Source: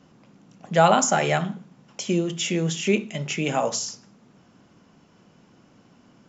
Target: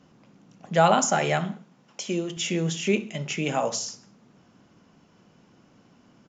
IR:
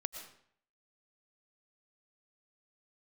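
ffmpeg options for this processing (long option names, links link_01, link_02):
-filter_complex "[0:a]asettb=1/sr,asplit=3[link_01][link_02][link_03];[link_01]atrim=end=1.544[link_04];[link_02]atrim=start=1.54:end=2.37,asetpts=PTS-STARTPTS,afade=type=in:duration=0.004:curve=qsin,afade=type=out:start_time=0.826:duration=0.004:curve=qsin,lowshelf=frequency=160:gain=-11.5[link_05];[link_03]atrim=start=2.366[link_06];[link_04][link_05]acrossfade=duration=0.004:curve1=hsin:curve2=qsin[link_07];[link_07][link_06]acrossfade=duration=0.004:curve1=qsin:curve2=hsin,aresample=16000,aresample=44100,aecho=1:1:66|132|198:0.0841|0.0412|0.0202,volume=-2dB"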